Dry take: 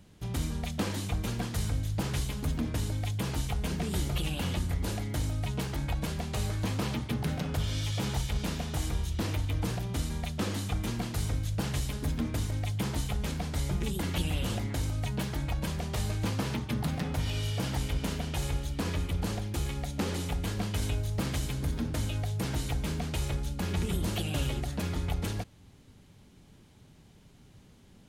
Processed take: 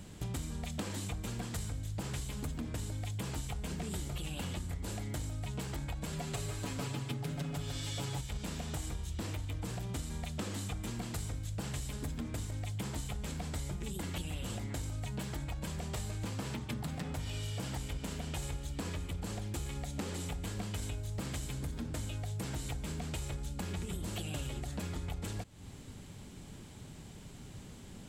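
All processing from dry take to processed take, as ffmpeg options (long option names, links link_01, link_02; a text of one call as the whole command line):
ffmpeg -i in.wav -filter_complex "[0:a]asettb=1/sr,asplit=3[link_01][link_02][link_03];[link_01]atrim=end=6.124[link_04];[link_02]atrim=start=6.12:end=8.21,asetpts=PTS-STARTPTS,afade=type=in:duration=0.004:curve=qsin,afade=type=out:start_time=2.086:duration=0.004:curve=qsin,aecho=1:1:7.1:0.9,atrim=end_sample=92169,aecho=1:1:150:0.501,atrim=end_sample=92169[link_05];[link_03]atrim=start=8.206[link_06];[link_04][link_05]acrossfade=duration=0.004:curve1=hsin:curve2=qsin[link_07];[link_07][link_06]acrossfade=duration=0.004:curve1=qsin:curve2=hsin,acompressor=threshold=-44dB:ratio=6,equalizer=frequency=7700:width=6:gain=10,volume=7dB" out.wav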